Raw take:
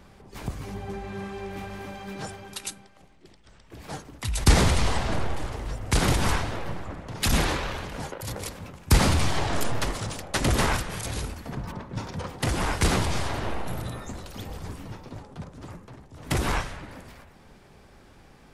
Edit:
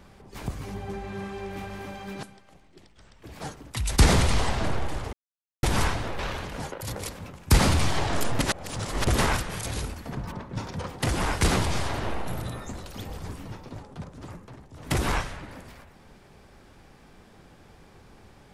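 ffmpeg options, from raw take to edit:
ffmpeg -i in.wav -filter_complex "[0:a]asplit=7[link_01][link_02][link_03][link_04][link_05][link_06][link_07];[link_01]atrim=end=2.232[link_08];[link_02]atrim=start=2.708:end=5.61,asetpts=PTS-STARTPTS,afade=type=out:start_time=2.898:duration=0.004:curve=hsin[link_09];[link_03]atrim=start=5.61:end=6.11,asetpts=PTS-STARTPTS,volume=0[link_10];[link_04]atrim=start=6.11:end=6.672,asetpts=PTS-STARTPTS,afade=type=in:duration=0.004:curve=hsin[link_11];[link_05]atrim=start=7.588:end=9.792[link_12];[link_06]atrim=start=9.788:end=10.472,asetpts=PTS-STARTPTS,areverse[link_13];[link_07]atrim=start=10.468[link_14];[link_09][link_10][link_11]concat=n=3:v=0:a=1[link_15];[link_08][link_15]acrossfade=duration=0.004:curve1=hsin:curve2=hsin[link_16];[link_16][link_12]acrossfade=duration=0.004:curve1=hsin:curve2=hsin[link_17];[link_17][link_13]acrossfade=duration=0.004:curve1=hsin:curve2=hsin[link_18];[link_18][link_14]acrossfade=duration=0.004:curve1=hsin:curve2=hsin" out.wav

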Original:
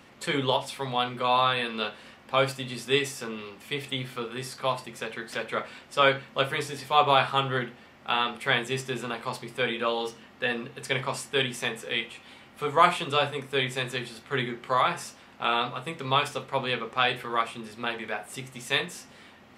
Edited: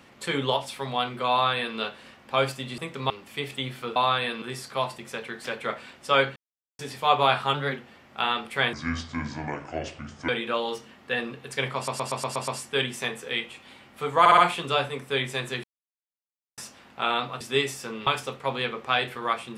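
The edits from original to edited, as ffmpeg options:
ffmpeg -i in.wav -filter_complex "[0:a]asplit=24[link_01][link_02][link_03][link_04][link_05][link_06][link_07][link_08][link_09][link_10][link_11][link_12][link_13][link_14][link_15][link_16][link_17][link_18][link_19][link_20][link_21][link_22][link_23][link_24];[link_01]atrim=end=2.782[link_25];[link_02]atrim=start=15.828:end=16.152[link_26];[link_03]atrim=start=3.438:end=4.302[link_27];[link_04]atrim=start=1.308:end=1.772[link_28];[link_05]atrim=start=4.298:end=6.24,asetpts=PTS-STARTPTS,afade=type=out:start_time=1.938:duration=0.004:curve=hsin[link_29];[link_06]atrim=start=6.24:end=6.67,asetpts=PTS-STARTPTS,volume=0[link_30];[link_07]atrim=start=6.67:end=7.424,asetpts=PTS-STARTPTS,afade=type=in:duration=0.004:curve=hsin[link_31];[link_08]atrim=start=7.42:end=7.68,asetpts=PTS-STARTPTS,asetrate=47628,aresample=44100[link_32];[link_09]atrim=start=7.676:end=8.634[link_33];[link_10]atrim=start=8.63:end=9.61,asetpts=PTS-STARTPTS,asetrate=27783,aresample=44100[link_34];[link_11]atrim=start=9.606:end=11.202[link_35];[link_12]atrim=start=11.078:end=11.202[link_36];[link_13]atrim=start=11.078:end=11.202[link_37];[link_14]atrim=start=11.078:end=11.202[link_38];[link_15]atrim=start=11.078:end=11.202[link_39];[link_16]atrim=start=11.078:end=11.202[link_40];[link_17]atrim=start=11.078:end=12.862[link_41];[link_18]atrim=start=12.798:end=12.862[link_42];[link_19]atrim=start=12.798:end=12.862[link_43];[link_20]atrim=start=12.798:end=14.06,asetpts=PTS-STARTPTS,afade=type=out:start_time=1.258:duration=0.004:curve=hsin[link_44];[link_21]atrim=start=14.06:end=15,asetpts=PTS-STARTPTS,volume=0[link_45];[link_22]atrim=start=15:end=15.832,asetpts=PTS-STARTPTS,afade=type=in:duration=0.004:curve=hsin[link_46];[link_23]atrim=start=2.778:end=3.442[link_47];[link_24]atrim=start=16.148[link_48];[link_25][link_26]acrossfade=duration=0.004:curve1=hsin:curve2=hsin[link_49];[link_49][link_27]acrossfade=duration=0.004:curve1=hsin:curve2=hsin[link_50];[link_50][link_28]acrossfade=duration=0.004:curve1=hsin:curve2=hsin[link_51];[link_29][link_30][link_31]concat=n=3:v=0:a=1[link_52];[link_51][link_52]acrossfade=duration=0.004:curve1=hsin:curve2=hsin[link_53];[link_53][link_32]acrossfade=duration=0.004:curve1=hsin:curve2=hsin[link_54];[link_54][link_33]acrossfade=duration=0.004:curve1=hsin:curve2=hsin[link_55];[link_55][link_34]acrossfade=duration=0.004:curve1=hsin:curve2=hsin[link_56];[link_56][link_35]acrossfade=duration=0.004:curve1=hsin:curve2=hsin[link_57];[link_57][link_36]acrossfade=duration=0.004:curve1=hsin:curve2=hsin[link_58];[link_58][link_37]acrossfade=duration=0.004:curve1=hsin:curve2=hsin[link_59];[link_59][link_38]acrossfade=duration=0.004:curve1=hsin:curve2=hsin[link_60];[link_60][link_39]acrossfade=duration=0.004:curve1=hsin:curve2=hsin[link_61];[link_61][link_40]acrossfade=duration=0.004:curve1=hsin:curve2=hsin[link_62];[link_62][link_41]acrossfade=duration=0.004:curve1=hsin:curve2=hsin[link_63];[link_63][link_42]acrossfade=duration=0.004:curve1=hsin:curve2=hsin[link_64];[link_64][link_43]acrossfade=duration=0.004:curve1=hsin:curve2=hsin[link_65];[link_44][link_45][link_46]concat=n=3:v=0:a=1[link_66];[link_65][link_66]acrossfade=duration=0.004:curve1=hsin:curve2=hsin[link_67];[link_67][link_47]acrossfade=duration=0.004:curve1=hsin:curve2=hsin[link_68];[link_68][link_48]acrossfade=duration=0.004:curve1=hsin:curve2=hsin" out.wav

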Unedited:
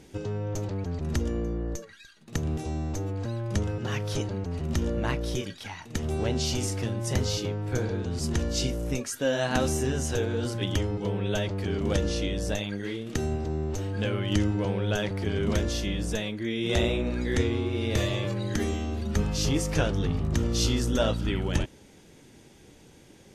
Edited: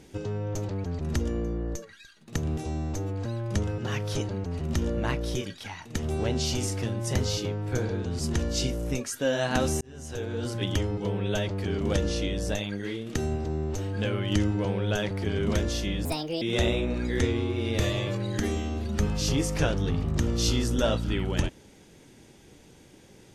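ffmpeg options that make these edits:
ffmpeg -i in.wav -filter_complex "[0:a]asplit=4[link_01][link_02][link_03][link_04];[link_01]atrim=end=9.81,asetpts=PTS-STARTPTS,afade=type=out:start_time=9.806:duration=0.004:curve=hsin[link_05];[link_02]atrim=start=9.81:end=16.054,asetpts=PTS-STARTPTS,afade=type=in:duration=0.78[link_06];[link_03]atrim=start=16.05:end=16.58,asetpts=PTS-STARTPTS,asetrate=63945,aresample=44100,atrim=end_sample=16119,asetpts=PTS-STARTPTS[link_07];[link_04]atrim=start=16.576[link_08];[link_05][link_06]concat=n=2:v=0:a=1[link_09];[link_09][link_07]acrossfade=duration=0.004:curve1=hsin:curve2=hsin[link_10];[link_10][link_08]acrossfade=duration=0.004:curve1=hsin:curve2=hsin" out.wav

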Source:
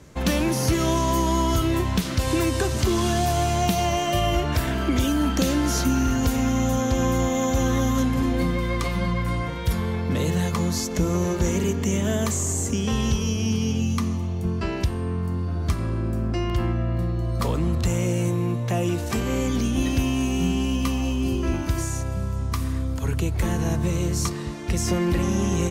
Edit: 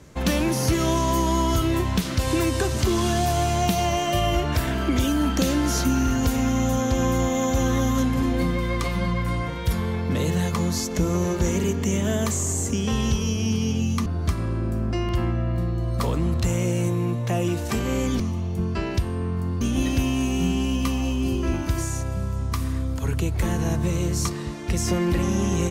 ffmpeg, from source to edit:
ffmpeg -i in.wav -filter_complex "[0:a]asplit=4[link_01][link_02][link_03][link_04];[link_01]atrim=end=14.062[link_05];[link_02]atrim=start=15.468:end=19.612[link_06];[link_03]atrim=start=14.058:end=15.472[link_07];[link_04]atrim=start=19.608[link_08];[link_05][link_06]acrossfade=duration=0.004:curve1=hsin:curve2=hsin[link_09];[link_09][link_07]acrossfade=duration=0.004:curve1=hsin:curve2=hsin[link_10];[link_10][link_08]acrossfade=duration=0.004:curve1=hsin:curve2=hsin" out.wav

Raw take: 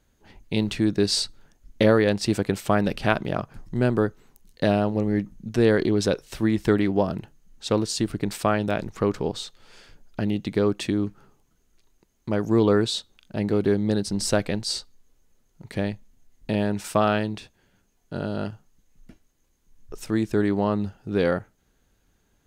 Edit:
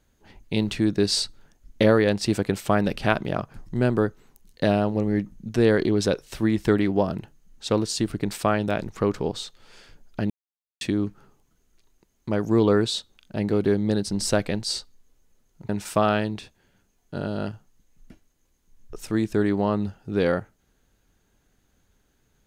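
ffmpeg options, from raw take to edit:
ffmpeg -i in.wav -filter_complex "[0:a]asplit=4[link_01][link_02][link_03][link_04];[link_01]atrim=end=10.3,asetpts=PTS-STARTPTS,afade=type=out:start_time=10.296:duration=0.004:curve=hsin[link_05];[link_02]atrim=start=10.3:end=10.81,asetpts=PTS-STARTPTS,volume=0[link_06];[link_03]atrim=start=10.81:end=15.692,asetpts=PTS-STARTPTS,afade=type=in:duration=0.004:curve=hsin[link_07];[link_04]atrim=start=16.678[link_08];[link_05][link_06][link_07]concat=n=3:v=0:a=1[link_09];[link_09][link_08]acrossfade=duration=0.004:curve1=hsin:curve2=hsin" out.wav

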